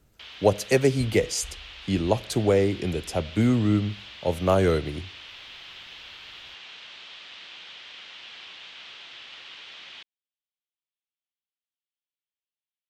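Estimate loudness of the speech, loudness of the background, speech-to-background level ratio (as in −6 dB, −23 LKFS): −24.5 LKFS, −41.5 LKFS, 17.0 dB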